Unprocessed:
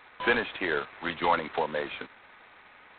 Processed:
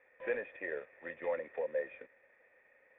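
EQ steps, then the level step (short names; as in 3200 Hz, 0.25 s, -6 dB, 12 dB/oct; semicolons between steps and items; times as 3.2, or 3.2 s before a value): vocal tract filter e; 0.0 dB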